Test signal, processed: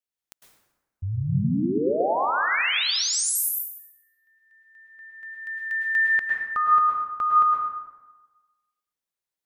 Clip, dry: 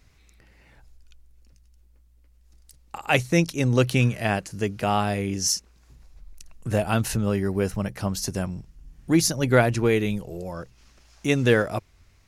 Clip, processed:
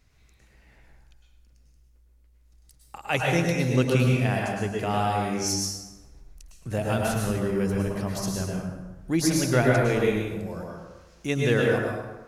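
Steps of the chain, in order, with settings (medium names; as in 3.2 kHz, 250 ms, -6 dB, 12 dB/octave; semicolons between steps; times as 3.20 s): plate-style reverb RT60 1.2 s, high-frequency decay 0.6×, pre-delay 95 ms, DRR -2 dB; trim -5.5 dB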